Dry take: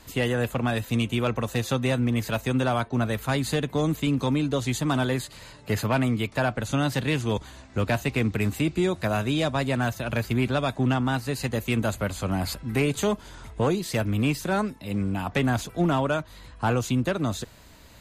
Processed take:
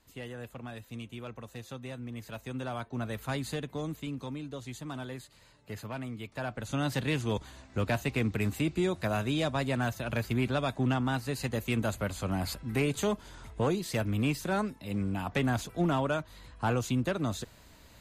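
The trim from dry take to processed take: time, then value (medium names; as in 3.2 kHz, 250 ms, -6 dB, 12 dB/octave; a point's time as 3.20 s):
2.01 s -17 dB
3.30 s -8 dB
4.39 s -15 dB
6.15 s -15 dB
6.92 s -5 dB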